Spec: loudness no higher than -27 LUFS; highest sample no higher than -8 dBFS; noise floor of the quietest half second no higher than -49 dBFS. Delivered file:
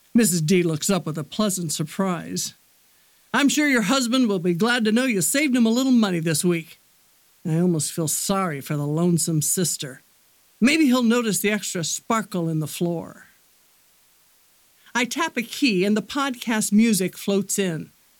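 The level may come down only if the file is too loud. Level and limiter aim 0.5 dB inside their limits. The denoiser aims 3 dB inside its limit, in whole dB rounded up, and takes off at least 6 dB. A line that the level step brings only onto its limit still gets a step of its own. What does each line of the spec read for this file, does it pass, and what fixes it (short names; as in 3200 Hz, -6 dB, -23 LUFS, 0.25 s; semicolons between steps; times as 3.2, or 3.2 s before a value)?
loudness -21.5 LUFS: fail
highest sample -9.5 dBFS: OK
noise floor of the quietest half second -58 dBFS: OK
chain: gain -6 dB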